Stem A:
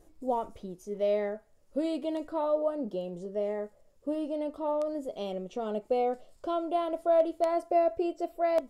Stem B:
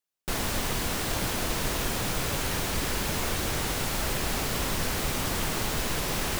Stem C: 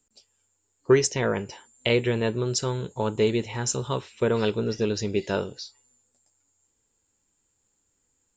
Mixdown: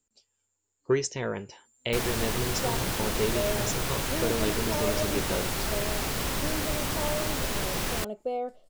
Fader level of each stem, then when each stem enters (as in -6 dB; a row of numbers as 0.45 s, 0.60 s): -3.5 dB, -1.0 dB, -6.5 dB; 2.35 s, 1.65 s, 0.00 s